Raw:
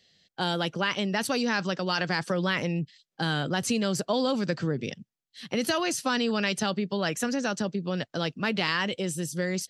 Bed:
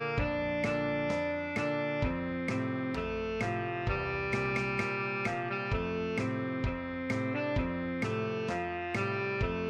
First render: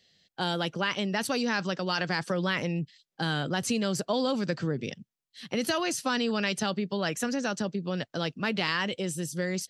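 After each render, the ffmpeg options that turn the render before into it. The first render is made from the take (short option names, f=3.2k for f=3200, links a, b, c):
-af "volume=-1.5dB"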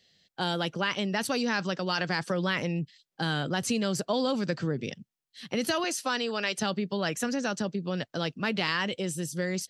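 -filter_complex "[0:a]asettb=1/sr,asplit=3[a][b][c];[a]atrim=end=5.844[d];[b]atrim=start=5.84:end=6.59,asetpts=PTS-STARTPTS,afade=t=in:d=0.004:c=qsin,afade=t=out:st=0.746:d=0.004:c=qsin,highpass=330[e];[c]atrim=start=6.586[f];[d][e]acrossfade=d=0.004:c1=hsin:c2=qsin[g];[g][f]acrossfade=d=0.004:c1=qsin:c2=hsin"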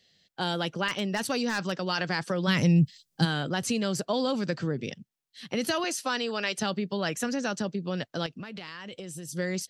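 -filter_complex "[0:a]asettb=1/sr,asplit=3[a][b][c];[a]atrim=end=0.884[d];[b]atrim=start=0.88:end=1.77,asetpts=PTS-STARTPTS,afade=t=in:d=0.004:c=qsin,afade=t=out:st=0.886:d=0.004:c=qsin,aeval=exprs='0.126*(abs(mod(val(0)/0.126+3,4)-2)-1)':c=same[e];[c]atrim=start=1.766[f];[d][e]acrossfade=d=0.004:c1=hsin:c2=qsin[g];[g][f]acrossfade=d=0.004:c1=qsin:c2=hsin,asplit=3[h][i][j];[h]afade=t=out:st=2.47:d=0.02[k];[i]bass=f=250:g=14,treble=f=4k:g=11,afade=t=in:st=2.47:d=0.02,afade=t=out:st=3.24:d=0.02[l];[j]afade=t=in:st=3.24:d=0.02[m];[k][l][m]amix=inputs=3:normalize=0,asettb=1/sr,asplit=3[n][o][p];[n]atrim=end=8.264[q];[o]atrim=start=8.26:end=9.29,asetpts=PTS-STARTPTS,afade=t=in:d=0.004:c=qsin,afade=t=out:st=1.026:d=0.004:c=qsin,acompressor=threshold=-35dB:ratio=16:attack=3.2:release=140:knee=1:detection=peak[r];[p]atrim=start=9.286[s];[q][r]acrossfade=d=0.004:c1=hsin:c2=qsin[t];[t][s]acrossfade=d=0.004:c1=qsin:c2=hsin"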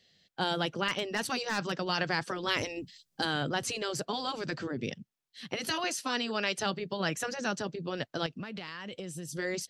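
-af "afftfilt=real='re*lt(hypot(re,im),0.251)':imag='im*lt(hypot(re,im),0.251)':win_size=1024:overlap=0.75,highshelf=f=6.1k:g=-4.5"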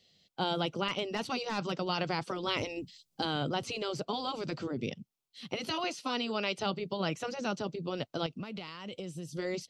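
-filter_complex "[0:a]acrossover=split=4800[a][b];[b]acompressor=threshold=-55dB:ratio=4:attack=1:release=60[c];[a][c]amix=inputs=2:normalize=0,equalizer=f=1.7k:t=o:w=0.29:g=-14.5"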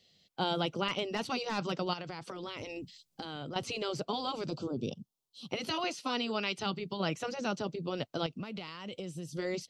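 -filter_complex "[0:a]asettb=1/sr,asplit=3[a][b][c];[a]atrim=end=1.934[d];[b]atrim=start=1.93:end=3.56,asetpts=PTS-STARTPTS,afade=t=in:d=0.004:c=qsin,afade=t=out:st=1.626:d=0.004:c=qsin,acompressor=threshold=-37dB:ratio=6:attack=3.2:release=140:knee=1:detection=peak[e];[c]atrim=start=3.556[f];[d][e]acrossfade=d=0.004:c1=hsin:c2=qsin[g];[g][f]acrossfade=d=0.004:c1=qsin:c2=hsin,asplit=3[h][i][j];[h]afade=t=out:st=4.48:d=0.02[k];[i]asuperstop=centerf=1900:order=4:qfactor=1,afade=t=in:st=4.48:d=0.02,afade=t=out:st=5.48:d=0.02[l];[j]afade=t=in:st=5.48:d=0.02[m];[k][l][m]amix=inputs=3:normalize=0,asettb=1/sr,asplit=3[n][o][p];[n]atrim=end=6.394[q];[o]atrim=start=6.39:end=7,asetpts=PTS-STARTPTS,afade=t=in:d=0.004:c=qsin,afade=t=out:st=0.606:d=0.004:c=qsin,equalizer=f=570:w=2.1:g=-8[r];[p]atrim=start=6.996[s];[q][r]acrossfade=d=0.004:c1=hsin:c2=qsin[t];[t][s]acrossfade=d=0.004:c1=qsin:c2=hsin"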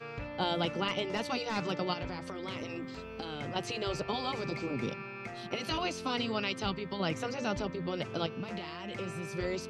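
-filter_complex "[1:a]volume=-9.5dB[a];[0:a][a]amix=inputs=2:normalize=0"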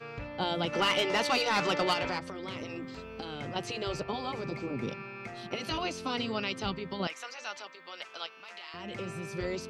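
-filter_complex "[0:a]asplit=3[a][b][c];[a]afade=t=out:st=0.72:d=0.02[d];[b]asplit=2[e][f];[f]highpass=f=720:p=1,volume=17dB,asoftclip=type=tanh:threshold=-17dB[g];[e][g]amix=inputs=2:normalize=0,lowpass=f=7.3k:p=1,volume=-6dB,afade=t=in:st=0.72:d=0.02,afade=t=out:st=2.18:d=0.02[h];[c]afade=t=in:st=2.18:d=0.02[i];[d][h][i]amix=inputs=3:normalize=0,asettb=1/sr,asplit=3[j][k][l];[j]atrim=end=4.034[m];[k]atrim=start=4.03:end=4.88,asetpts=PTS-STARTPTS,afade=t=in:d=0.004:c=qsin,afade=t=out:st=0.846:d=0.004:c=qsin,equalizer=f=5.1k:w=0.46:g=-5[n];[l]atrim=start=4.876[o];[m][n]acrossfade=d=0.004:c1=hsin:c2=qsin[p];[p][o]acrossfade=d=0.004:c1=qsin:c2=hsin,asettb=1/sr,asplit=3[q][r][s];[q]atrim=end=7.074[t];[r]atrim=start=7.07:end=8.74,asetpts=PTS-STARTPTS,afade=t=in:d=0.004:c=qsin,afade=t=out:st=1.666:d=0.004:c=qsin,highpass=1.1k[u];[s]atrim=start=8.736[v];[t][u]acrossfade=d=0.004:c1=hsin:c2=qsin[w];[w][v]acrossfade=d=0.004:c1=qsin:c2=hsin"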